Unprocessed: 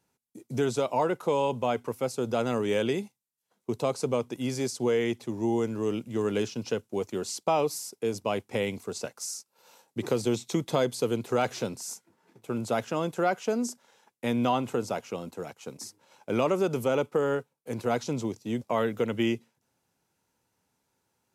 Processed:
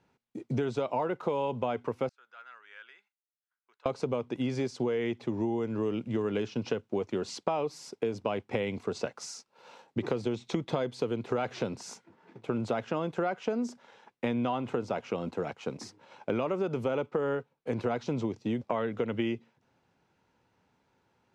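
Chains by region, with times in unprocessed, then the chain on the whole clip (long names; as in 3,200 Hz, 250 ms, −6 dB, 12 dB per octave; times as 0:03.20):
0:02.09–0:03.86: resonant band-pass 1,500 Hz, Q 4.2 + first difference + saturating transformer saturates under 730 Hz
whole clip: low-pass filter 3,200 Hz 12 dB per octave; downward compressor, threshold −34 dBFS; level +6.5 dB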